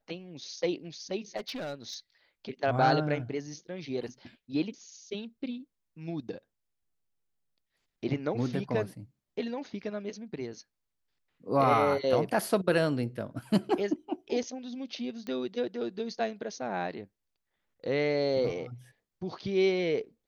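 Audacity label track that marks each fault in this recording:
1.360000	1.940000	clipped -33 dBFS
15.270000	15.270000	pop -26 dBFS

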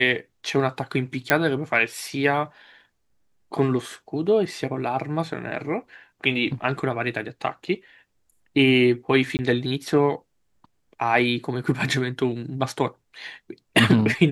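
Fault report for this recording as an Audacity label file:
1.300000	1.300000	pop -3 dBFS
9.370000	9.390000	dropout 19 ms

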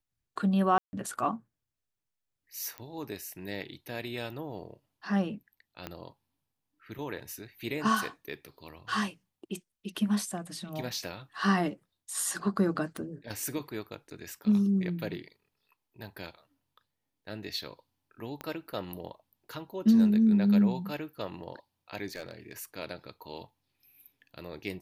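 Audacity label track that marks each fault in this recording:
0.780000	0.930000	dropout 150 ms
2.780000	2.780000	pop -24 dBFS
5.870000	5.870000	pop -21 dBFS
12.970000	12.970000	pop
18.410000	18.410000	pop -23 dBFS
22.130000	22.600000	clipped -33 dBFS

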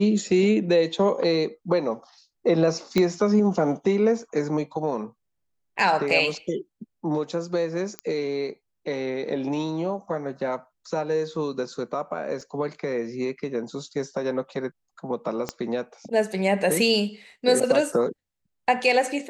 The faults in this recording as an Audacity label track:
2.980000	2.980000	pop -9 dBFS
7.990000	7.990000	pop -15 dBFS
12.410000	12.410000	dropout 3.6 ms
15.490000	15.490000	pop -13 dBFS

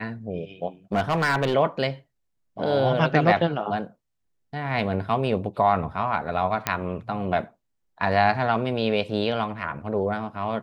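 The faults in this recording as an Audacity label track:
0.930000	1.540000	clipped -17.5 dBFS
6.670000	6.670000	pop -5 dBFS

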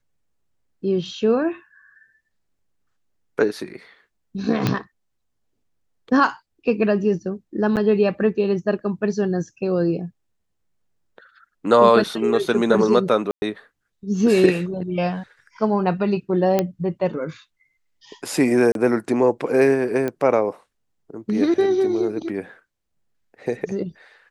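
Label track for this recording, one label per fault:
4.670000	4.670000	pop -6 dBFS
7.760000	7.770000	dropout 8.4 ms
13.310000	13.420000	dropout 110 ms
16.590000	16.590000	pop -6 dBFS
18.720000	18.750000	dropout 32 ms
20.080000	20.080000	pop -13 dBFS

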